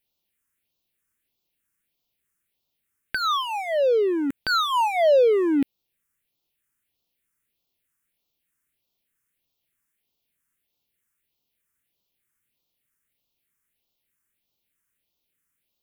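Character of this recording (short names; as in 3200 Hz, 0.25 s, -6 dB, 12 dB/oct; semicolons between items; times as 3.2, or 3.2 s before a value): phasing stages 4, 1.6 Hz, lowest notch 660–1700 Hz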